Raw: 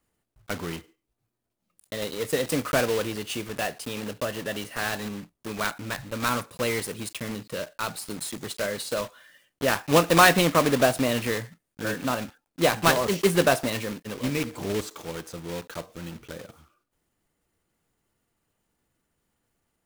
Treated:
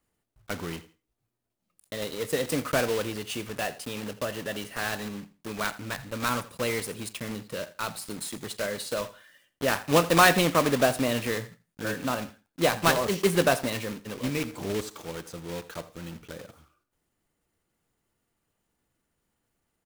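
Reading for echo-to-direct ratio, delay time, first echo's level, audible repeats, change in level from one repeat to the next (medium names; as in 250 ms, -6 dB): -17.5 dB, 83 ms, -17.5 dB, 2, -12.5 dB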